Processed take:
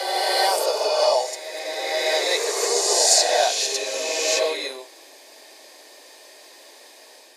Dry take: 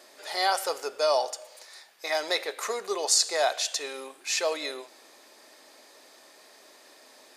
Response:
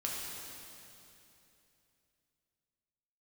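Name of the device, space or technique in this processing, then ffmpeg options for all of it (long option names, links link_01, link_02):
ghost voice: -filter_complex "[0:a]areverse[link_01];[1:a]atrim=start_sample=2205[link_02];[link_01][link_02]afir=irnorm=-1:irlink=0,areverse,highpass=frequency=330:width=0.5412,highpass=frequency=330:width=1.3066,equalizer=frequency=1300:width=4.1:gain=-13,volume=5dB"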